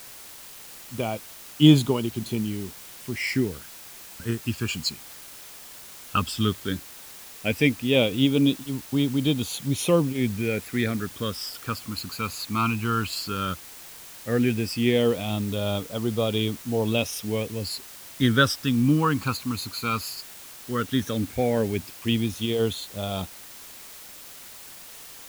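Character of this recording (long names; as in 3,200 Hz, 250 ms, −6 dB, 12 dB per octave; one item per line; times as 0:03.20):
phaser sweep stages 12, 0.14 Hz, lowest notch 580–1,800 Hz
a quantiser's noise floor 8 bits, dither triangular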